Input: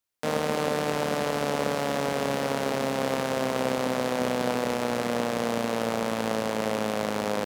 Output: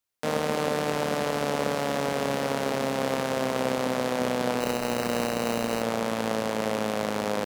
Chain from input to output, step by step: 4.60–5.82 s: sample-rate reducer 3.4 kHz, jitter 0%

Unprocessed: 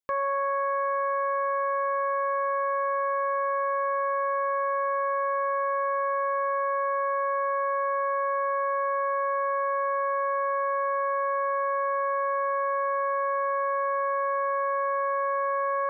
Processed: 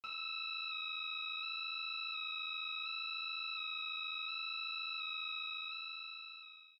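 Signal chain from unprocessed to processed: fade out at the end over 3.46 s; speed mistake 33 rpm record played at 78 rpm; chord resonator D2 fifth, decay 0.58 s; feedback delay 76 ms, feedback 52%, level -10 dB; cancelling through-zero flanger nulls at 1.4 Hz, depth 7.5 ms; trim +5.5 dB

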